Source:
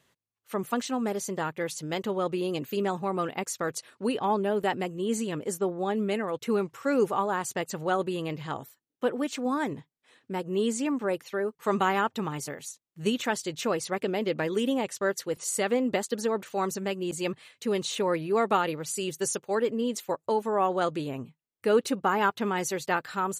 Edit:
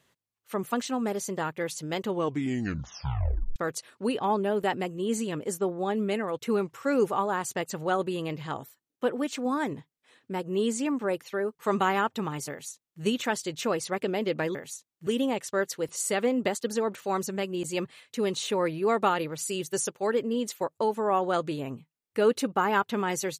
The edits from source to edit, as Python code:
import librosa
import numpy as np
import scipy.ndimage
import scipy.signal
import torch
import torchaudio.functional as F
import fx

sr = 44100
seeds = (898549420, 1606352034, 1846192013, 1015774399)

y = fx.edit(x, sr, fx.tape_stop(start_s=2.07, length_s=1.49),
    fx.duplicate(start_s=12.5, length_s=0.52, to_s=14.55), tone=tone)